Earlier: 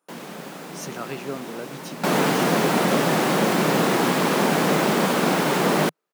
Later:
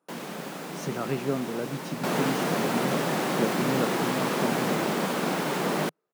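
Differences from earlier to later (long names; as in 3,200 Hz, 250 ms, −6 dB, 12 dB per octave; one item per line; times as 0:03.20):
speech: add spectral tilt −2.5 dB per octave
second sound −7.0 dB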